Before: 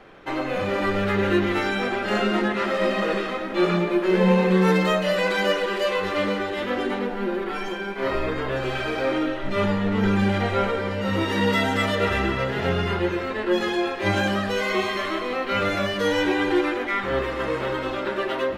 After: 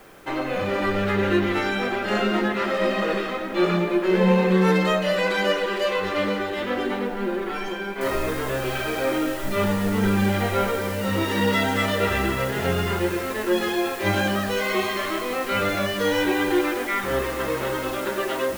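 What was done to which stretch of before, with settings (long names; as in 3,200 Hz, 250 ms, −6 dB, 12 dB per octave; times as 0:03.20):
0:08.01: noise floor change −58 dB −41 dB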